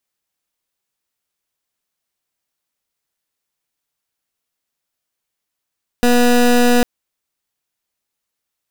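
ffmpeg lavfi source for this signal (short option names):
-f lavfi -i "aevalsrc='0.266*(2*lt(mod(243*t,1),0.22)-1)':d=0.8:s=44100"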